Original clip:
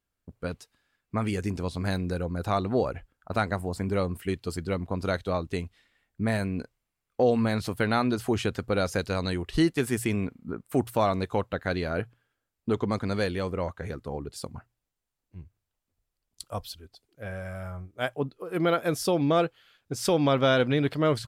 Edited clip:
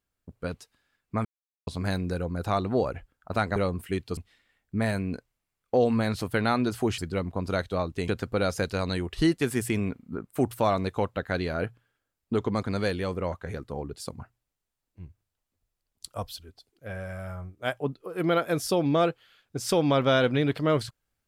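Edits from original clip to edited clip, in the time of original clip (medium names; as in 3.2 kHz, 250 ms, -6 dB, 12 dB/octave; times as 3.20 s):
1.25–1.67 s: mute
3.56–3.92 s: delete
4.53–5.63 s: move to 8.44 s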